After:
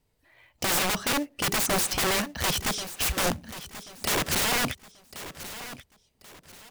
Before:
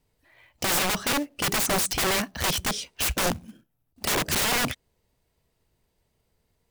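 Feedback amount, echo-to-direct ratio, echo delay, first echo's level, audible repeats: 32%, -13.5 dB, 1.085 s, -14.0 dB, 3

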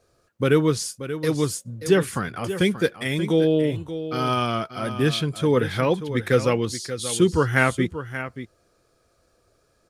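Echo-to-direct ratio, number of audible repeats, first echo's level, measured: -11.5 dB, 1, -11.5 dB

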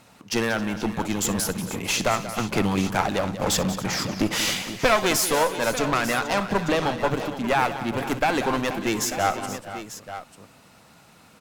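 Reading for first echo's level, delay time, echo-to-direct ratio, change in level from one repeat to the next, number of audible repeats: -16.5 dB, 61 ms, -7.0 dB, no steady repeat, 5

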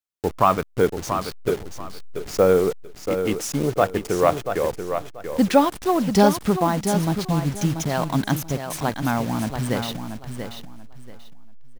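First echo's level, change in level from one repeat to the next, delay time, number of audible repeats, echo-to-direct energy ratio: -8.0 dB, -13.0 dB, 0.685 s, 3, -8.0 dB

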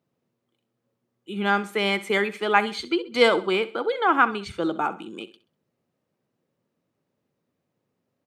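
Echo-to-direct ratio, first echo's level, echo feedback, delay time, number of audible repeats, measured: -15.5 dB, -16.0 dB, 36%, 65 ms, 3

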